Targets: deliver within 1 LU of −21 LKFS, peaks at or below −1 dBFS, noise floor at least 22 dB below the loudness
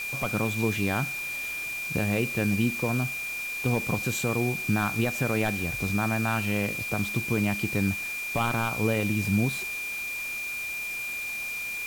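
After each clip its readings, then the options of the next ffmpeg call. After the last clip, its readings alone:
interfering tone 2,400 Hz; level of the tone −31 dBFS; background noise floor −34 dBFS; target noise floor −50 dBFS; integrated loudness −27.5 LKFS; sample peak −13.5 dBFS; target loudness −21.0 LKFS
→ -af "bandreject=frequency=2400:width=30"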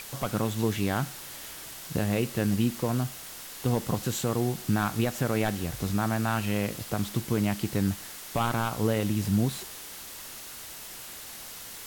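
interfering tone none found; background noise floor −43 dBFS; target noise floor −52 dBFS
→ -af "afftdn=noise_reduction=9:noise_floor=-43"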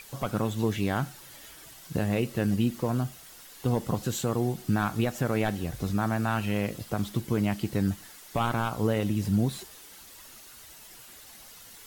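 background noise floor −49 dBFS; target noise floor −51 dBFS
→ -af "afftdn=noise_reduction=6:noise_floor=-49"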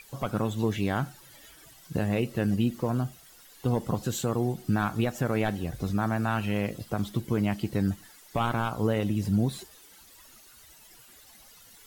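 background noise floor −54 dBFS; integrated loudness −29.0 LKFS; sample peak −15.5 dBFS; target loudness −21.0 LKFS
→ -af "volume=8dB"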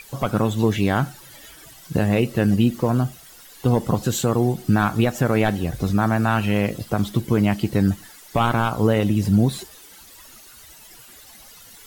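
integrated loudness −21.0 LKFS; sample peak −7.5 dBFS; background noise floor −46 dBFS

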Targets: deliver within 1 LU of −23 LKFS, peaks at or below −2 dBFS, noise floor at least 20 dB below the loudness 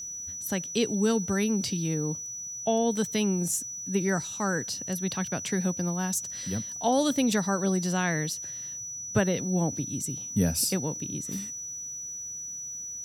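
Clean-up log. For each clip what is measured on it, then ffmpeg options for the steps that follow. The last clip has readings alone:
interfering tone 5,900 Hz; level of the tone −35 dBFS; integrated loudness −28.5 LKFS; sample peak −11.5 dBFS; target loudness −23.0 LKFS
→ -af "bandreject=frequency=5900:width=30"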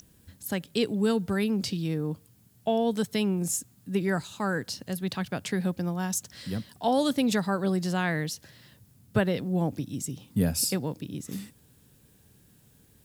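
interfering tone none found; integrated loudness −29.0 LKFS; sample peak −12.0 dBFS; target loudness −23.0 LKFS
→ -af "volume=6dB"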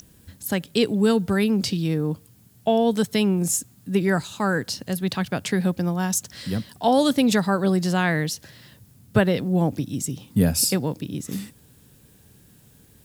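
integrated loudness −23.0 LKFS; sample peak −6.0 dBFS; background noise floor −54 dBFS

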